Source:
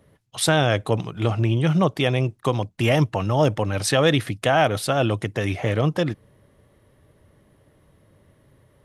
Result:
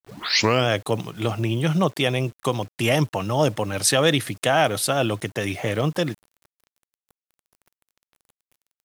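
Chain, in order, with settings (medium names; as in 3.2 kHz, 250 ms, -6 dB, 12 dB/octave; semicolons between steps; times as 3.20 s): tape start-up on the opening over 0.68 s; high-pass 120 Hz 12 dB/octave; treble shelf 4.8 kHz +10 dB; word length cut 8-bit, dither none; trim -1 dB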